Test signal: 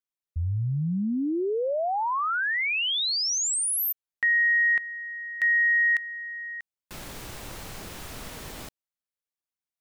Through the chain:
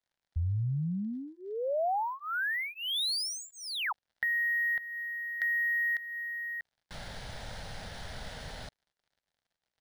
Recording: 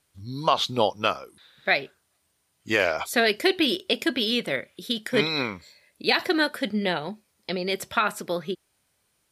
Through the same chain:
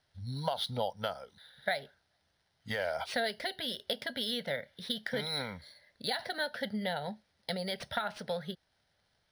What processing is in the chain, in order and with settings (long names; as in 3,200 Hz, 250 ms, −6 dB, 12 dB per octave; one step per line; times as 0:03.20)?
dynamic equaliser 1,800 Hz, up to −4 dB, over −32 dBFS
downward compressor 4 to 1, threshold −27 dBFS
surface crackle 130 per second −59 dBFS
phaser with its sweep stopped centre 1,700 Hz, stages 8
linearly interpolated sample-rate reduction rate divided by 3×